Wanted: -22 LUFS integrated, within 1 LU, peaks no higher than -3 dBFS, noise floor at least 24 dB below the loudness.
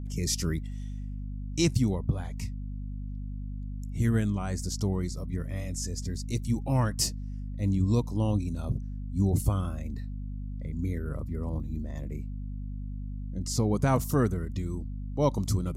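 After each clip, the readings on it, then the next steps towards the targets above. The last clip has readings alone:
hum 50 Hz; harmonics up to 250 Hz; hum level -33 dBFS; loudness -31.0 LUFS; peak -12.0 dBFS; loudness target -22.0 LUFS
-> notches 50/100/150/200/250 Hz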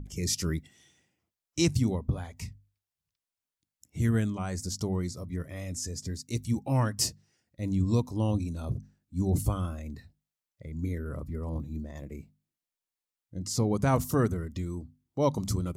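hum none; loudness -31.0 LUFS; peak -13.5 dBFS; loudness target -22.0 LUFS
-> gain +9 dB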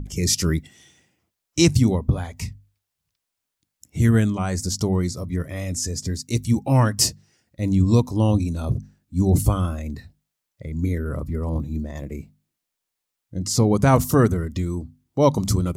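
loudness -22.0 LUFS; peak -4.5 dBFS; noise floor -82 dBFS

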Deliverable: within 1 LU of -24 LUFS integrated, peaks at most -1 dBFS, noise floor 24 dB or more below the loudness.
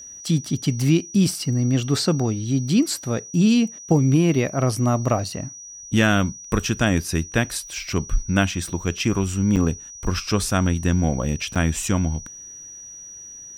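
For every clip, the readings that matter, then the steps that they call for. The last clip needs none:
dropouts 2; longest dropout 7.2 ms; steady tone 5800 Hz; tone level -37 dBFS; loudness -22.0 LUFS; peak -4.5 dBFS; loudness target -24.0 LUFS
-> interpolate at 9.56/11.55, 7.2 ms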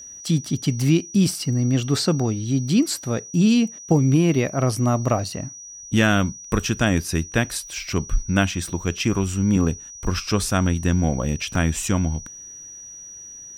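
dropouts 0; steady tone 5800 Hz; tone level -37 dBFS
-> notch 5800 Hz, Q 30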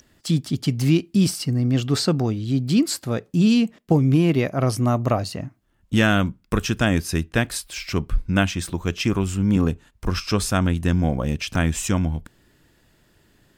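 steady tone none; loudness -22.0 LUFS; peak -4.5 dBFS; loudness target -24.0 LUFS
-> gain -2 dB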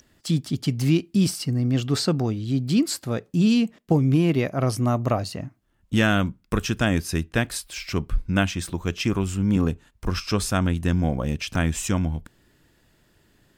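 loudness -24.0 LUFS; peak -6.5 dBFS; noise floor -64 dBFS

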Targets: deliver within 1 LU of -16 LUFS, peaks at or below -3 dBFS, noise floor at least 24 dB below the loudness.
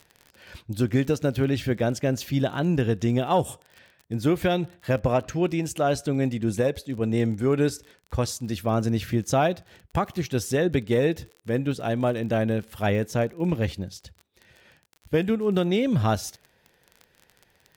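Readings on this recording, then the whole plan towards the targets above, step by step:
ticks 33/s; loudness -25.5 LUFS; peak -10.5 dBFS; loudness target -16.0 LUFS
-> de-click; gain +9.5 dB; limiter -3 dBFS

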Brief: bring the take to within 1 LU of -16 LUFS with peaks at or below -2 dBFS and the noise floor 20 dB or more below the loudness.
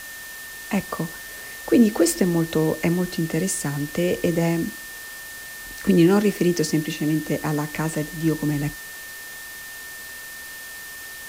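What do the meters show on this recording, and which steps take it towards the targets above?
steady tone 1800 Hz; tone level -37 dBFS; noise floor -37 dBFS; noise floor target -43 dBFS; loudness -22.5 LUFS; peak -5.5 dBFS; loudness target -16.0 LUFS
-> notch 1800 Hz, Q 30; denoiser 6 dB, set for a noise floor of -37 dBFS; gain +6.5 dB; limiter -2 dBFS

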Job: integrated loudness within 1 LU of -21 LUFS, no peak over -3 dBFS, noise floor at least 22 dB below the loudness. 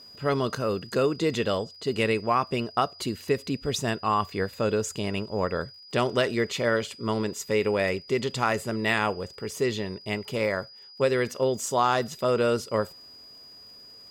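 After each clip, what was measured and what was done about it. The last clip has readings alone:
ticks 38/s; steady tone 4900 Hz; tone level -46 dBFS; loudness -27.0 LUFS; peak -9.5 dBFS; loudness target -21.0 LUFS
-> de-click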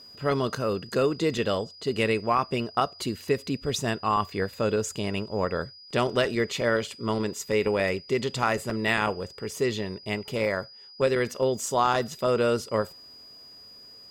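ticks 0.35/s; steady tone 4900 Hz; tone level -46 dBFS
-> notch 4900 Hz, Q 30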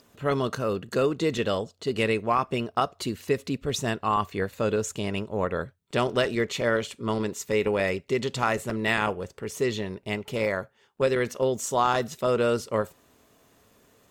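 steady tone none; loudness -27.0 LUFS; peak -9.5 dBFS; loudness target -21.0 LUFS
-> gain +6 dB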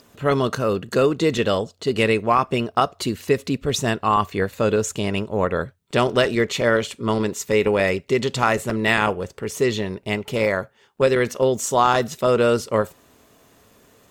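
loudness -21.0 LUFS; peak -3.5 dBFS; noise floor -58 dBFS

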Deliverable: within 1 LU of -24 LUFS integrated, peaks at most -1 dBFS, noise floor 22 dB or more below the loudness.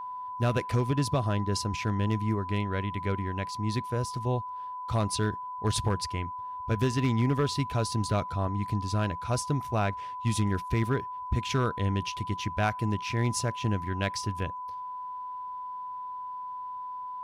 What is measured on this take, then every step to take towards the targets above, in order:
clipped 0.2%; flat tops at -17.0 dBFS; steady tone 1000 Hz; tone level -35 dBFS; loudness -30.5 LUFS; peak -17.0 dBFS; loudness target -24.0 LUFS
-> clip repair -17 dBFS; notch 1000 Hz, Q 30; gain +6.5 dB

